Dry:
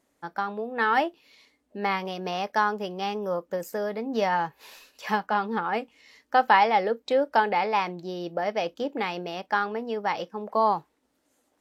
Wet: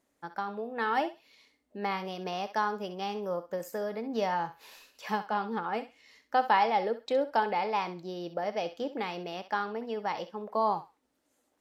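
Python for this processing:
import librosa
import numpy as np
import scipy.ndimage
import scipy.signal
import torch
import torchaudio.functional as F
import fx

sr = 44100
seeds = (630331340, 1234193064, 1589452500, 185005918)

y = fx.echo_thinned(x, sr, ms=65, feedback_pct=22, hz=670.0, wet_db=-11.5)
y = fx.dynamic_eq(y, sr, hz=1800.0, q=1.2, threshold_db=-37.0, ratio=4.0, max_db=-4)
y = F.gain(torch.from_numpy(y), -4.5).numpy()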